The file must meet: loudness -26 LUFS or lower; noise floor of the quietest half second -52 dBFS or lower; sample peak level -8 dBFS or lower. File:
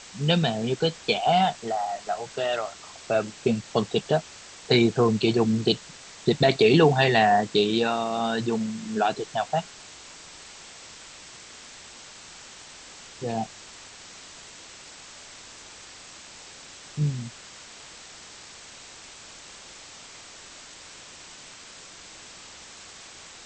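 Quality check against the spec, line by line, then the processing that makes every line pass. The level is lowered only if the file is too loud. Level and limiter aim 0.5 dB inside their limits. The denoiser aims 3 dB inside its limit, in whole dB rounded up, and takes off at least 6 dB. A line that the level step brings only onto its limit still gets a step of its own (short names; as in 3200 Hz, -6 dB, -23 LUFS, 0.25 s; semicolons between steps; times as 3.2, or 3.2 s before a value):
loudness -24.0 LUFS: fail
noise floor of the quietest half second -46 dBFS: fail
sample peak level -7.0 dBFS: fail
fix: denoiser 7 dB, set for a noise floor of -46 dBFS; gain -2.5 dB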